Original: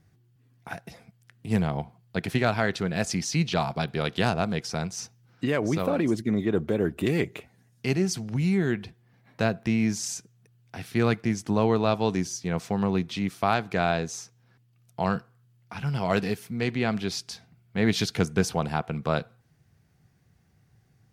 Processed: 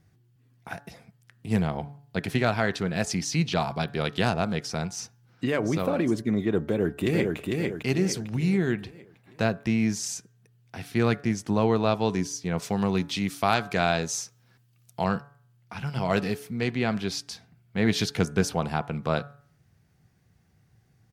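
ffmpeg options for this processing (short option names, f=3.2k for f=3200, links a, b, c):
-filter_complex "[0:a]asplit=2[a][b];[b]afade=t=in:st=6.6:d=0.01,afade=t=out:st=7.37:d=0.01,aecho=0:1:450|900|1350|1800|2250|2700:0.707946|0.318576|0.143359|0.0645116|0.0290302|0.0130636[c];[a][c]amix=inputs=2:normalize=0,asettb=1/sr,asplit=3[d][e][f];[d]atrim=end=12.624[g];[e]atrim=start=12.62:end=15.04,asetpts=PTS-STARTPTS,afade=t=in:d=0.004:c=qsin,afade=t=out:st=2.416:d=0.004:c=qsin,highshelf=f=3k:g=8[h];[f]atrim=start=15.036[i];[g][h]acrossfade=d=0.004:c1=hsin:c2=qsin[j];[j][i]acrossfade=d=0.004:c1=qsin:c2=hsin,bandreject=f=142.7:t=h:w=4,bandreject=f=285.4:t=h:w=4,bandreject=f=428.1:t=h:w=4,bandreject=f=570.8:t=h:w=4,bandreject=f=713.5:t=h:w=4,bandreject=f=856.2:t=h:w=4,bandreject=f=998.9:t=h:w=4,bandreject=f=1.1416k:t=h:w=4,bandreject=f=1.2843k:t=h:w=4,bandreject=f=1.427k:t=h:w=4,bandreject=f=1.5697k:t=h:w=4,bandreject=f=1.7124k:t=h:w=4,bandreject=f=1.8551k:t=h:w=4"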